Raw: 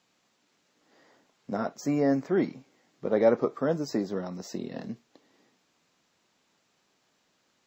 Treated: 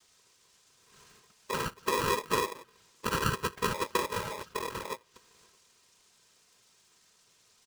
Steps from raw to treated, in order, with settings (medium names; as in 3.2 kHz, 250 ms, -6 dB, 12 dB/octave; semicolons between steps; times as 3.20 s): compression 6:1, threshold -26 dBFS, peak gain reduction 10 dB; peaking EQ 5.7 kHz +13 dB 0.77 oct; noise-vocoded speech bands 6; comb 3.5 ms, depth 58%; low-pass that closes with the level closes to 770 Hz, closed at -31 dBFS; polarity switched at an audio rate 730 Hz